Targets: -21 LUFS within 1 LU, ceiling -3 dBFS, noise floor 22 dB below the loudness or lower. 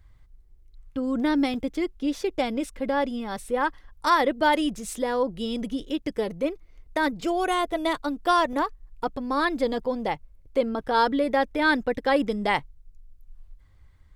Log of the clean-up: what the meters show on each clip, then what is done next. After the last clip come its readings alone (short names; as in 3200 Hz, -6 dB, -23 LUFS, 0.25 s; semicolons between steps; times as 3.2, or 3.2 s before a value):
dropouts 2; longest dropout 1.6 ms; loudness -26.0 LUFS; peak -9.0 dBFS; loudness target -21.0 LUFS
-> interpolate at 1.54/8.53, 1.6 ms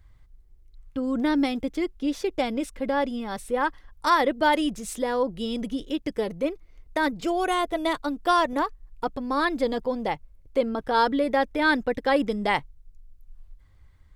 dropouts 0; loudness -26.0 LUFS; peak -9.0 dBFS; loudness target -21.0 LUFS
-> gain +5 dB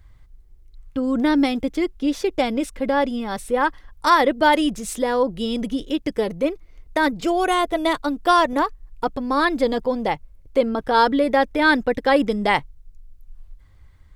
loudness -21.0 LUFS; peak -4.0 dBFS; noise floor -49 dBFS